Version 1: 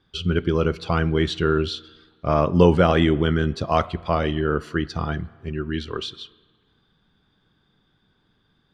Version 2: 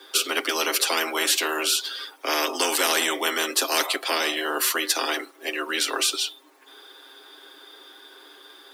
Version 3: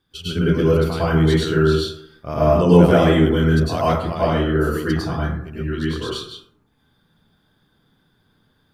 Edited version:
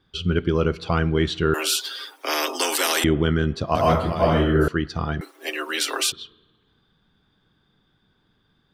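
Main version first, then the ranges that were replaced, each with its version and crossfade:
1
0:01.54–0:03.04: punch in from 2
0:03.75–0:04.68: punch in from 3
0:05.21–0:06.12: punch in from 2

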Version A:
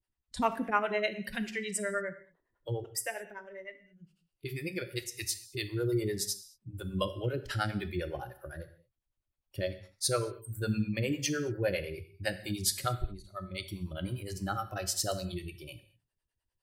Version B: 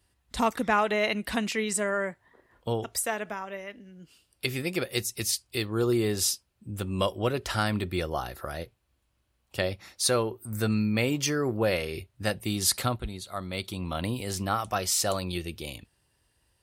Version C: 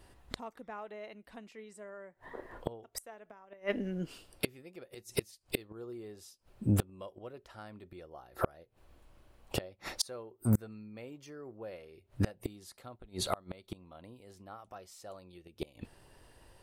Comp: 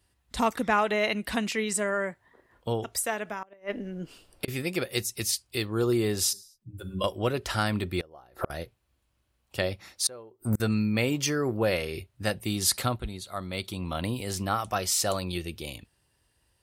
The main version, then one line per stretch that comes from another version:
B
0:03.43–0:04.48: punch in from C
0:06.33–0:07.04: punch in from A
0:08.01–0:08.50: punch in from C
0:10.07–0:10.60: punch in from C

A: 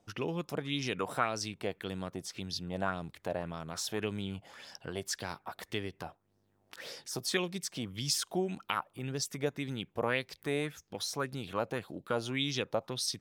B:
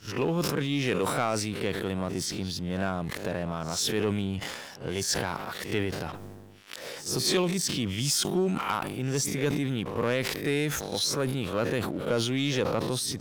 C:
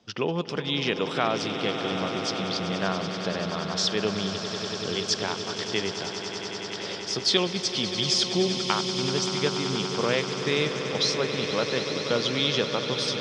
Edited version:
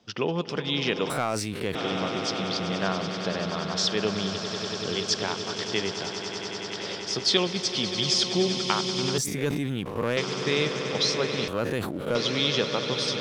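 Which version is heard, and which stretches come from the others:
C
0:01.10–0:01.75: punch in from B
0:09.18–0:10.17: punch in from B
0:11.48–0:12.15: punch in from B
not used: A

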